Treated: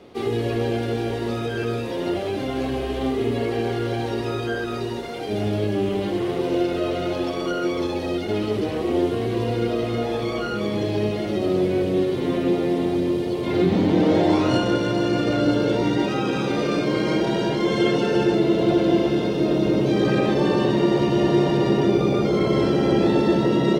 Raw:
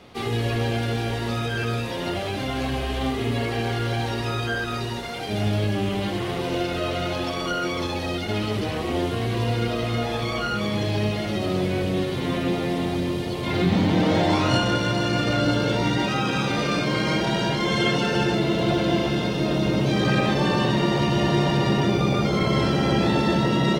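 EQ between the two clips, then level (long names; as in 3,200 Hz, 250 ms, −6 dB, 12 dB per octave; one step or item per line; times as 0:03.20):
parametric band 380 Hz +11 dB 1.4 octaves
−4.5 dB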